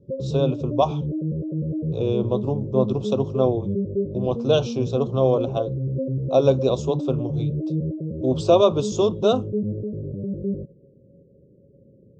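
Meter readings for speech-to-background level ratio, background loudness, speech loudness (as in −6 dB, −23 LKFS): 5.0 dB, −28.0 LKFS, −23.0 LKFS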